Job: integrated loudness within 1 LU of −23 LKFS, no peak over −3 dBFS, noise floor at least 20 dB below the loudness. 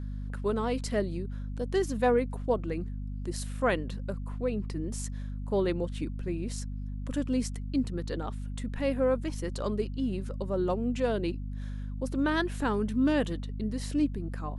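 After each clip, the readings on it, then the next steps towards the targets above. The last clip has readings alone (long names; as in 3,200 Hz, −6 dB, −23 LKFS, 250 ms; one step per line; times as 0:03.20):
mains hum 50 Hz; hum harmonics up to 250 Hz; level of the hum −33 dBFS; integrated loudness −31.5 LKFS; sample peak −15.0 dBFS; target loudness −23.0 LKFS
→ mains-hum notches 50/100/150/200/250 Hz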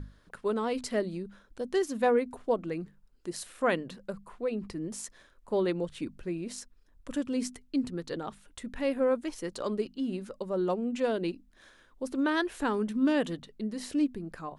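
mains hum none found; integrated loudness −32.0 LKFS; sample peak −15.5 dBFS; target loudness −23.0 LKFS
→ level +9 dB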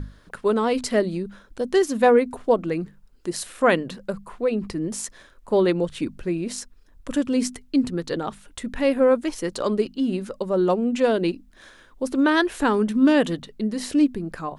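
integrated loudness −23.0 LKFS; sample peak −6.5 dBFS; background noise floor −52 dBFS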